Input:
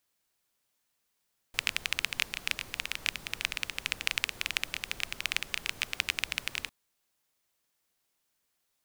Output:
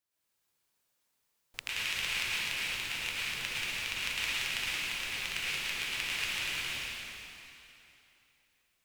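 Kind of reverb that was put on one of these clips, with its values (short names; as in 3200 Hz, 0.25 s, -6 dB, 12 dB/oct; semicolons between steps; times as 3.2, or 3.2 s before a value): plate-style reverb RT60 3 s, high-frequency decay 0.9×, pre-delay 95 ms, DRR -10 dB; gain -10 dB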